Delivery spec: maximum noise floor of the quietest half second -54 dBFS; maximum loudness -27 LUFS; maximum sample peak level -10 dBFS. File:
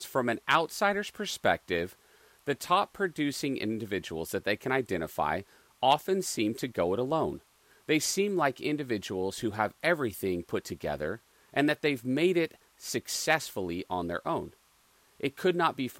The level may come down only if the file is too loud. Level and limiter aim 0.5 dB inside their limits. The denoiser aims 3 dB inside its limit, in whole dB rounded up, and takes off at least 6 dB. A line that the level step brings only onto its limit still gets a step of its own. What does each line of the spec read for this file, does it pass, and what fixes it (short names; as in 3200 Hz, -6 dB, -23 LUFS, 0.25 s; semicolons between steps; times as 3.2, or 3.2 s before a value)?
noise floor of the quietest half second -65 dBFS: OK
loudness -30.5 LUFS: OK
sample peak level -11.0 dBFS: OK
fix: none